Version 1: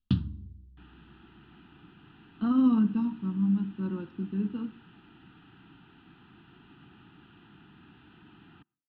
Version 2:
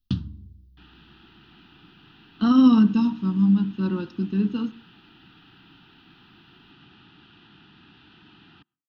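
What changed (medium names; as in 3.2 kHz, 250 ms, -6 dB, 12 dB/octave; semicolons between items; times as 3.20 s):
speech +7.0 dB; first sound: add tape spacing loss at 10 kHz 25 dB; master: remove distance through air 470 m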